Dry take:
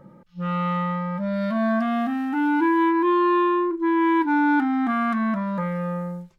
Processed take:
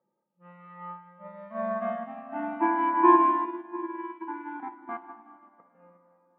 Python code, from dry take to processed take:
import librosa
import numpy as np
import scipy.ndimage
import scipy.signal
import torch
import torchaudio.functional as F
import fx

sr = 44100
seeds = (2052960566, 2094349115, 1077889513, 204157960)

y = fx.dereverb_blind(x, sr, rt60_s=1.3)
y = fx.peak_eq(y, sr, hz=530.0, db=11.0, octaves=2.4)
y = fx.level_steps(y, sr, step_db=19, at=(3.15, 5.75))
y = fx.cabinet(y, sr, low_hz=290.0, low_slope=12, high_hz=2500.0, hz=(300.0, 540.0, 1400.0), db=(-7, -8, -8))
y = y + 10.0 ** (-21.0 / 20.0) * np.pad(y, (int(247 * sr / 1000.0), 0))[:len(y)]
y = fx.rev_plate(y, sr, seeds[0], rt60_s=4.6, hf_ratio=0.75, predelay_ms=0, drr_db=-1.0)
y = fx.upward_expand(y, sr, threshold_db=-33.0, expansion=2.5)
y = y * 10.0 ** (-1.0 / 20.0)